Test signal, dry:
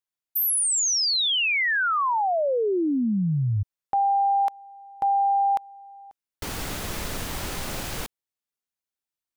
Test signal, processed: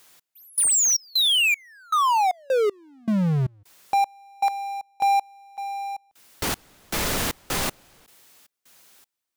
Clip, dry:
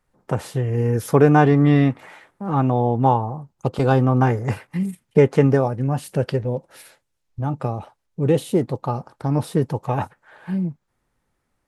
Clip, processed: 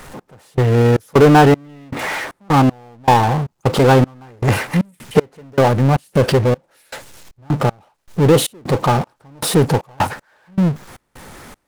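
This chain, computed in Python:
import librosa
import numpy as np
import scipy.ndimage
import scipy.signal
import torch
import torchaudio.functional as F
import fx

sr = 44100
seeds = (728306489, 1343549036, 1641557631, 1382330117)

y = fx.low_shelf(x, sr, hz=120.0, db=-7.5)
y = fx.step_gate(y, sr, bpm=78, pattern='x..xx.xx..xx.', floor_db=-60.0, edge_ms=4.5)
y = fx.power_curve(y, sr, exponent=0.5)
y = F.gain(torch.from_numpy(y), 1.5).numpy()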